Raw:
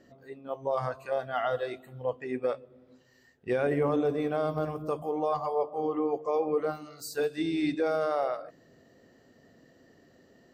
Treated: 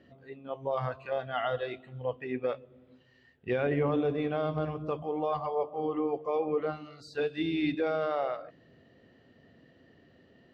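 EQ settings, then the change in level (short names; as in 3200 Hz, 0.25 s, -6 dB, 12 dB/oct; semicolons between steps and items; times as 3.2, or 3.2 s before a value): HPF 57 Hz; synth low-pass 3100 Hz, resonance Q 2.1; low shelf 150 Hz +9.5 dB; -3.0 dB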